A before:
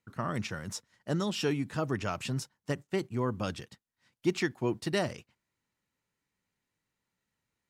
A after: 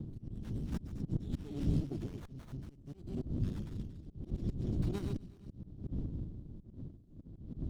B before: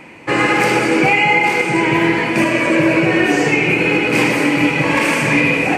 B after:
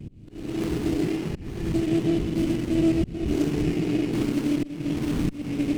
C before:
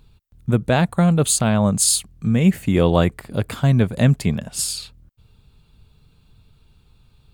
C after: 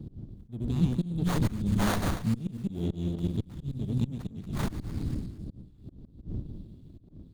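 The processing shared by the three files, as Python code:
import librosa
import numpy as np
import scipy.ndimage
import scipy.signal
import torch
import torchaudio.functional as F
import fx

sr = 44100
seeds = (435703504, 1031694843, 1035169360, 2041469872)

y = fx.reverse_delay_fb(x, sr, ms=117, feedback_pct=46, wet_db=-3)
y = fx.dmg_wind(y, sr, seeds[0], corner_hz=170.0, level_db=-23.0)
y = scipy.signal.sosfilt(scipy.signal.ellip(3, 1.0, 80, [330.0, 3400.0], 'bandstop', fs=sr, output='sos'), y)
y = fx.peak_eq(y, sr, hz=430.0, db=5.0, octaves=0.21)
y = fx.auto_swell(y, sr, attack_ms=336.0)
y = fx.running_max(y, sr, window=17)
y = y * 10.0 ** (-7.0 / 20.0)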